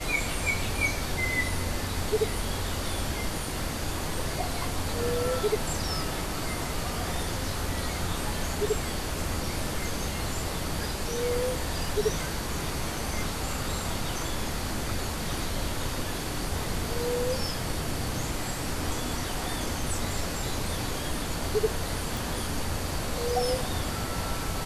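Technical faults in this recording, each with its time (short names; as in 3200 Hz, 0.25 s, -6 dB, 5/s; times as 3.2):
22.17 pop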